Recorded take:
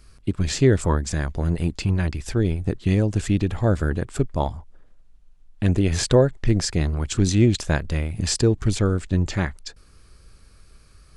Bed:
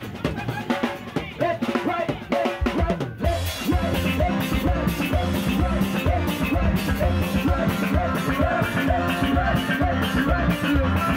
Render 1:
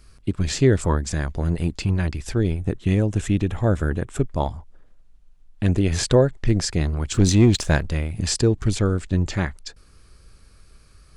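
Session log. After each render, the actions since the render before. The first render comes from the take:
0:02.56–0:04.29: parametric band 4,600 Hz −10 dB 0.23 octaves
0:07.14–0:07.88: leveller curve on the samples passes 1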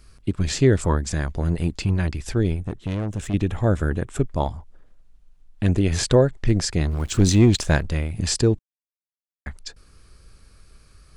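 0:02.60–0:03.34: tube saturation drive 22 dB, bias 0.6
0:06.91–0:07.39: centre clipping without the shift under −40.5 dBFS
0:08.59–0:09.46: silence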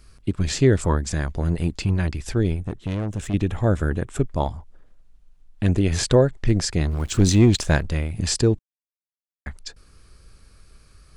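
no processing that can be heard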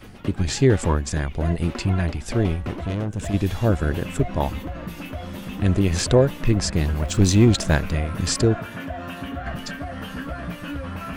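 mix in bed −10.5 dB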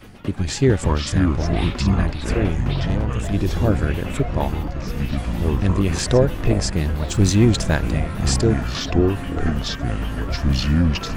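delay with pitch and tempo change per echo 282 ms, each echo −6 semitones, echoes 3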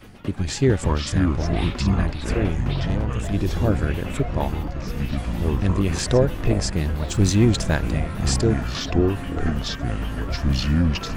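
level −2 dB

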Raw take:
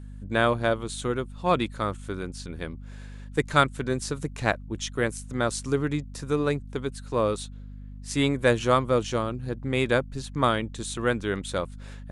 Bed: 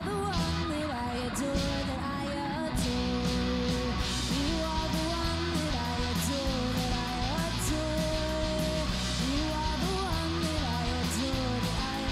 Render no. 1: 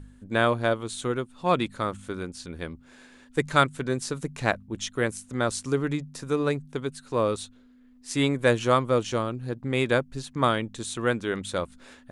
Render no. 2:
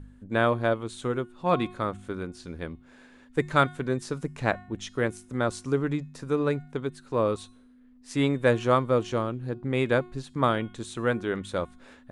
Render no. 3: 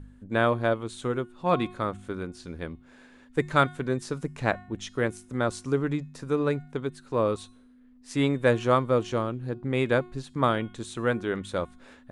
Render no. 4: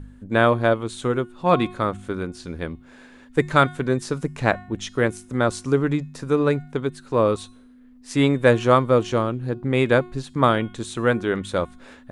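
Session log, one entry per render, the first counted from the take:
hum removal 50 Hz, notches 4
high-shelf EQ 3,200 Hz −9.5 dB; hum removal 361.9 Hz, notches 35
no processing that can be heard
level +6 dB; brickwall limiter −3 dBFS, peak gain reduction 1.5 dB

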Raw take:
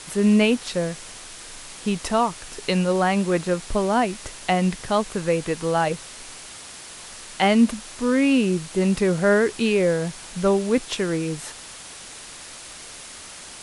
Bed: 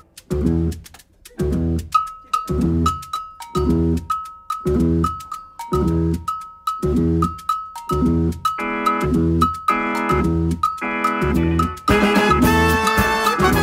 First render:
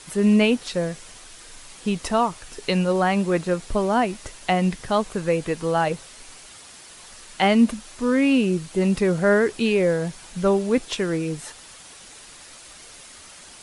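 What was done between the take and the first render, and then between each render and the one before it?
broadband denoise 6 dB, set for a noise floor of −40 dBFS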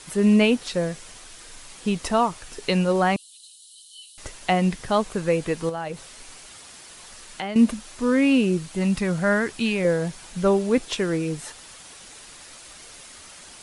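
0:03.16–0:04.18: Chebyshev high-pass with heavy ripple 2,900 Hz, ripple 9 dB
0:05.69–0:07.56: downward compressor 4 to 1, threshold −28 dBFS
0:08.72–0:09.85: parametric band 420 Hz −9.5 dB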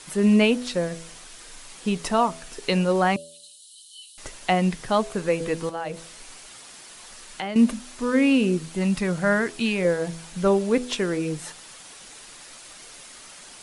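parametric band 64 Hz −12.5 dB 0.81 octaves
hum removal 82.51 Hz, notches 8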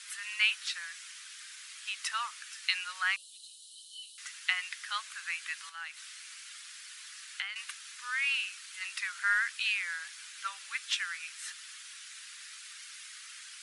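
Butterworth high-pass 1,400 Hz 36 dB per octave
high-shelf EQ 6,400 Hz −7 dB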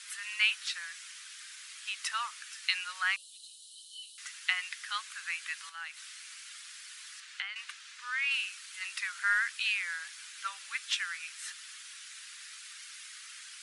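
0:04.71–0:05.23: high-pass filter 740 Hz
0:07.20–0:08.31: high-frequency loss of the air 59 metres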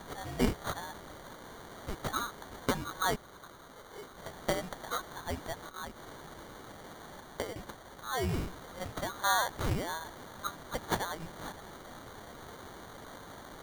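decimation without filtering 17×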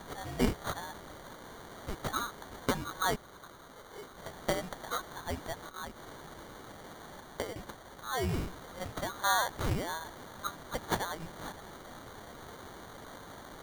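no processing that can be heard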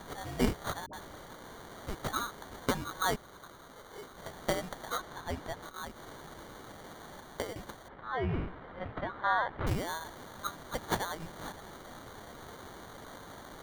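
0:00.86–0:01.29: all-pass dispersion highs, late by 72 ms, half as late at 530 Hz
0:04.96–0:05.61: high-shelf EQ 8,500 Hz → 4,800 Hz −7 dB
0:07.88–0:09.67: low-pass filter 2,700 Hz 24 dB per octave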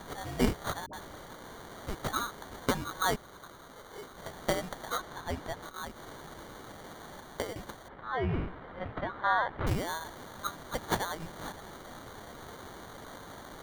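level +1.5 dB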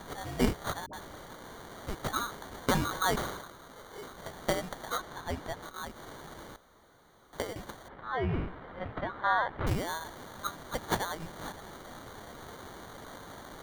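0:02.28–0:04.28: level that may fall only so fast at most 55 dB per second
0:06.56–0:07.33: fill with room tone

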